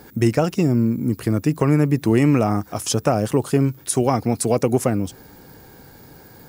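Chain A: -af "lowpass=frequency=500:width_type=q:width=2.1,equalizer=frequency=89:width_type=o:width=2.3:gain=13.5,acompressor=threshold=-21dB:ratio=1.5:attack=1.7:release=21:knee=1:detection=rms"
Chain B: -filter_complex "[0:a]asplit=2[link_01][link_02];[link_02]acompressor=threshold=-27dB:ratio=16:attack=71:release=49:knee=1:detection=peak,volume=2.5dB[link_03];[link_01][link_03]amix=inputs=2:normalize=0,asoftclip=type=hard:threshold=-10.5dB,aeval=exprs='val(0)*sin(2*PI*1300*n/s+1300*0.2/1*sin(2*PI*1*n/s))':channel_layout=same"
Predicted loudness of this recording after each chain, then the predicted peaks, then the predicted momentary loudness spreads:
−17.5, −18.5 LKFS; −4.5, −10.5 dBFS; 5, 21 LU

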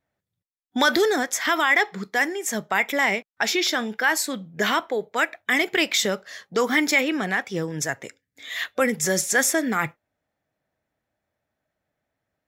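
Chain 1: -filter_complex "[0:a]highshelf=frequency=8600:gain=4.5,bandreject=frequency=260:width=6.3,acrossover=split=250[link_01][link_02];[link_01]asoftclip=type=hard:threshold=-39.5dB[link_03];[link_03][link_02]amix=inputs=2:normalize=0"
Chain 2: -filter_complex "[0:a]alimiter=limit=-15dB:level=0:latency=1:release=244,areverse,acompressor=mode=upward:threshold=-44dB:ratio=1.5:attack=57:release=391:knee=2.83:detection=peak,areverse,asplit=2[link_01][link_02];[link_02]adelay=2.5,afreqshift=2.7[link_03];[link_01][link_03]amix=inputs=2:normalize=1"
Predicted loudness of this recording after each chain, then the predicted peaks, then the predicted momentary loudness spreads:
−22.5, −30.0 LKFS; −5.5, −15.0 dBFS; 10, 7 LU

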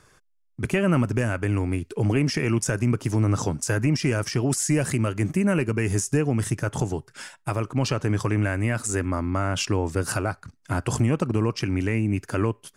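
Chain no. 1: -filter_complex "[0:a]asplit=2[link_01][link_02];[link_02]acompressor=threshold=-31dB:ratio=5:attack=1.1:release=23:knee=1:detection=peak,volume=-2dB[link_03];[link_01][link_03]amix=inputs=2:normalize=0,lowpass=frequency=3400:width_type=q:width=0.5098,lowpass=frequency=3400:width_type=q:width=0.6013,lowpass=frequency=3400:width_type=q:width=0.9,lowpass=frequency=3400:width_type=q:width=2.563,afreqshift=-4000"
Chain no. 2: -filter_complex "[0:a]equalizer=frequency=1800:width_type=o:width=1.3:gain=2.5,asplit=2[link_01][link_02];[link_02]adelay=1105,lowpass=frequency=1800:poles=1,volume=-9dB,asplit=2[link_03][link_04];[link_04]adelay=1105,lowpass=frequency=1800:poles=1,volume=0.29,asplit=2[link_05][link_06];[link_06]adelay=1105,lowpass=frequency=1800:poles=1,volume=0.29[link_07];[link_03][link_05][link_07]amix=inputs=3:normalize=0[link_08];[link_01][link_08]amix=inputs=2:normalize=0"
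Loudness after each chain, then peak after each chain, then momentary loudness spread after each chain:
−19.0, −24.0 LKFS; −8.5, −9.0 dBFS; 5, 5 LU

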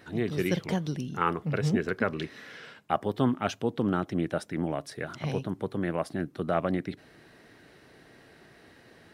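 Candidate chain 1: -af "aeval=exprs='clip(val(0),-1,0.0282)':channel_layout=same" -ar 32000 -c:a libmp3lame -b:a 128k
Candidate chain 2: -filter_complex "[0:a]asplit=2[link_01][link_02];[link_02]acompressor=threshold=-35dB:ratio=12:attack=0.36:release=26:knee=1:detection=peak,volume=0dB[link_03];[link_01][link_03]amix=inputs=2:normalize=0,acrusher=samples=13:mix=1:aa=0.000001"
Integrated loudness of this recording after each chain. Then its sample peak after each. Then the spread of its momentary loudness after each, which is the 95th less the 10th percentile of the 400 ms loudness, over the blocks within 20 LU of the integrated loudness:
−33.5, −28.5 LKFS; −13.0, −10.5 dBFS; 7, 9 LU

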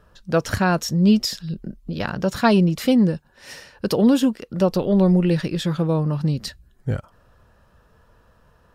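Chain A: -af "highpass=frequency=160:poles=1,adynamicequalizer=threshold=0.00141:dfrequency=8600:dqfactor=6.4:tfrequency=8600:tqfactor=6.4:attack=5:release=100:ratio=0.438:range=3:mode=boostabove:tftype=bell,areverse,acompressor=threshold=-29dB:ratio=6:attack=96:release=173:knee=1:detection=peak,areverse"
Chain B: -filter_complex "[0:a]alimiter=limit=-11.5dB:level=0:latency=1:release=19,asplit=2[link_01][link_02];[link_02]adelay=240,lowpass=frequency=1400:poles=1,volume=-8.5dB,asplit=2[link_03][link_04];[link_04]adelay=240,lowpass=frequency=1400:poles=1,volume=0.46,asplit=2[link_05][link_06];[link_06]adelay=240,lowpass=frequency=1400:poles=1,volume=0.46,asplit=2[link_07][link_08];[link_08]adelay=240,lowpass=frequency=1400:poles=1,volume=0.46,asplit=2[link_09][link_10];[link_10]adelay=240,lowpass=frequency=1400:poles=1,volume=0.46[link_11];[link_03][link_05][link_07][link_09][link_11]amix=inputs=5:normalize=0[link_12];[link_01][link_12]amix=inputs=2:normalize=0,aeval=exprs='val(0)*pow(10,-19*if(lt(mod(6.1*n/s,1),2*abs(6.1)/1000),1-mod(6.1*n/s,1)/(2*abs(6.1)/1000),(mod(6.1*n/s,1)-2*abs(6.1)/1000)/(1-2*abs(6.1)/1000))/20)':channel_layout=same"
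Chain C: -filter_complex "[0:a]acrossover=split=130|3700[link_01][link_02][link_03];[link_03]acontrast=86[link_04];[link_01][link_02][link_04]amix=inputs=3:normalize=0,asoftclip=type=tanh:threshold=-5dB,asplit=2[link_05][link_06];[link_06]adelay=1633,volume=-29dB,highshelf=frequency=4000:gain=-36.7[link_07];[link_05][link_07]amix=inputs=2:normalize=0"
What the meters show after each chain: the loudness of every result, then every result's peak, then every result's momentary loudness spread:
−29.0, −28.0, −20.5 LKFS; −8.0, −10.0, −6.0 dBFS; 8, 12, 15 LU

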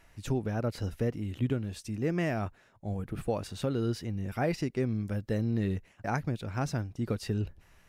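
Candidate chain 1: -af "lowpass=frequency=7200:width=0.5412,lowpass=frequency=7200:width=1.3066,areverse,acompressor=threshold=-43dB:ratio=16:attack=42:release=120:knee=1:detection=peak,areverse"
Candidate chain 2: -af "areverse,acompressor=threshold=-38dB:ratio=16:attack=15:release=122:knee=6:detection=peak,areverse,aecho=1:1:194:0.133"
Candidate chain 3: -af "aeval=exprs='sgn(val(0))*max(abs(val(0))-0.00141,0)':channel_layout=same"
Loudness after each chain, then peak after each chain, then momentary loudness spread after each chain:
−44.5, −42.0, −33.5 LKFS; −28.0, −28.5, −18.0 dBFS; 3, 3, 6 LU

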